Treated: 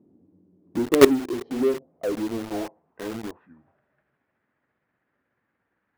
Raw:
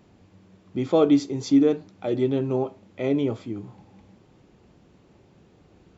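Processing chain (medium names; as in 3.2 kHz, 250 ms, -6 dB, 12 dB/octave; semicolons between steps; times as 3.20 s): pitch bend over the whole clip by -8 st starting unshifted; low-pass that closes with the level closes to 600 Hz, closed at -20 dBFS; treble shelf 5.4 kHz -10.5 dB; band-pass sweep 290 Hz -> 1.7 kHz, 0.57–4.00 s; tilt shelf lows +5 dB, about 1.4 kHz; in parallel at -4.5 dB: companded quantiser 2-bit; on the sum: trim -1.5 dB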